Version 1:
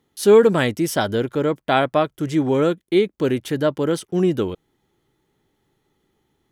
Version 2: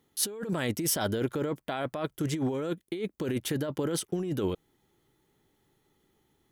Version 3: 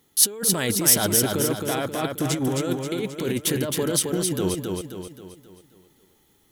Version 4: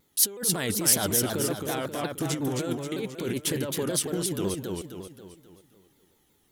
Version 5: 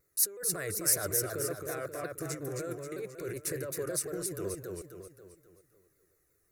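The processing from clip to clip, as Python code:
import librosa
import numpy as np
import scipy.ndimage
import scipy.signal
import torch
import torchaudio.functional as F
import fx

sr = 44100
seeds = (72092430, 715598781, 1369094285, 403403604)

y1 = fx.high_shelf(x, sr, hz=8200.0, db=7.5)
y1 = fx.over_compress(y1, sr, threshold_db=-23.0, ratio=-1.0)
y1 = F.gain(torch.from_numpy(y1), -7.5).numpy()
y2 = fx.high_shelf(y1, sr, hz=3700.0, db=9.5)
y2 = fx.echo_feedback(y2, sr, ms=266, feedback_pct=46, wet_db=-4.0)
y2 = F.gain(torch.from_numpy(y2), 4.0).numpy()
y3 = fx.vibrato_shape(y2, sr, shape='saw_down', rate_hz=5.4, depth_cents=160.0)
y3 = F.gain(torch.from_numpy(y3), -4.5).numpy()
y4 = fx.fixed_phaser(y3, sr, hz=870.0, stages=6)
y4 = F.gain(torch.from_numpy(y4), -4.0).numpy()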